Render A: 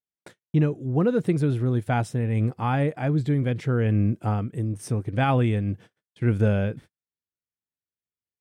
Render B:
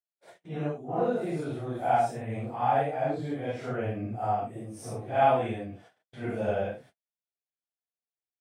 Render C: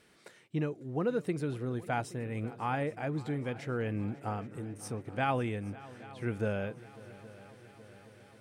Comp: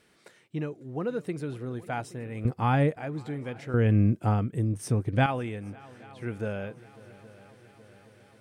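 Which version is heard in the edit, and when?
C
2.45–2.96 from A
3.74–5.26 from A
not used: B

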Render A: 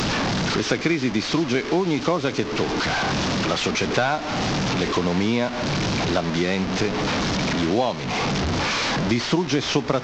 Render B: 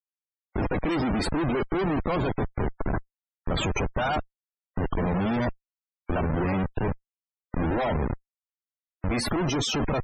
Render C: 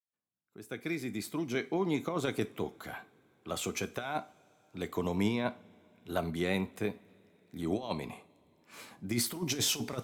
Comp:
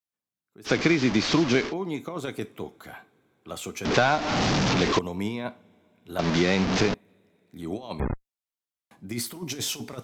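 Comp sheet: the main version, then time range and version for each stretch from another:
C
0.69–1.69 from A, crossfade 0.10 s
3.85–4.99 from A
6.19–6.94 from A
8–8.91 from B

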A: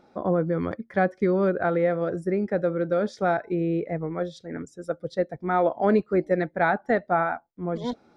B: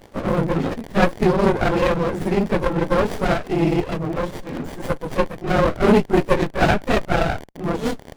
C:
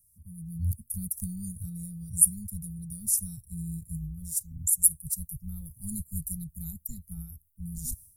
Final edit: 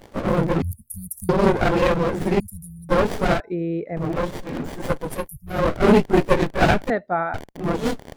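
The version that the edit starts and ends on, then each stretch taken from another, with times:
B
0.62–1.29 from C
2.4–2.89 from C
3.4–3.97 from A
5.17–5.58 from C, crossfade 0.24 s
6.9–7.34 from A

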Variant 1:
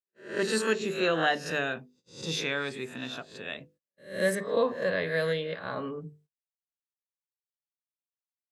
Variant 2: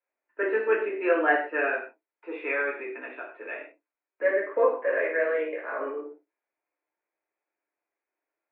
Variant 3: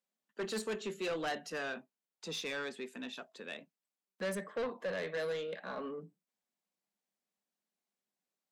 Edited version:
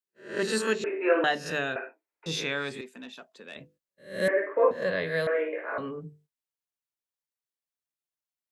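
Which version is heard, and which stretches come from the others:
1
0.84–1.24 from 2
1.76–2.26 from 2
2.81–3.56 from 3
4.28–4.71 from 2
5.27–5.78 from 2

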